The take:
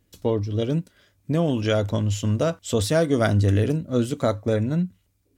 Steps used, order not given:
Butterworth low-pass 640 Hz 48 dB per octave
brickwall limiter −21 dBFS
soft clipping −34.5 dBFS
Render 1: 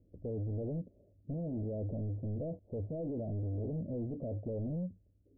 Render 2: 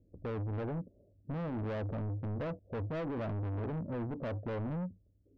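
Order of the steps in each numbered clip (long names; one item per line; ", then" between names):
brickwall limiter, then soft clipping, then Butterworth low-pass
Butterworth low-pass, then brickwall limiter, then soft clipping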